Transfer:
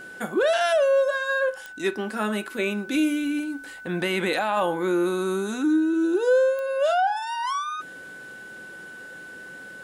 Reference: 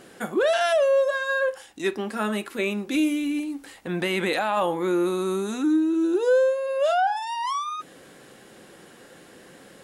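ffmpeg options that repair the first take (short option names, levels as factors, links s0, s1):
-af "adeclick=t=4,bandreject=f=1500:w=30"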